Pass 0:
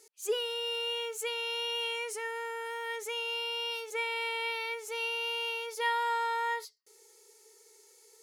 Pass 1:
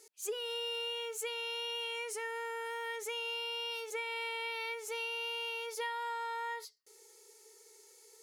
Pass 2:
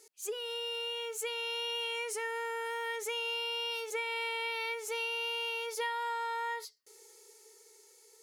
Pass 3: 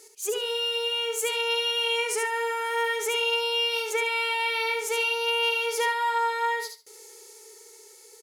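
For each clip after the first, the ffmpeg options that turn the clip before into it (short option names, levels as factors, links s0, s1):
-af "acompressor=threshold=0.0178:ratio=6"
-af "dynaudnorm=f=260:g=9:m=1.41"
-af "aecho=1:1:71|142|213:0.531|0.101|0.0192,volume=2.66"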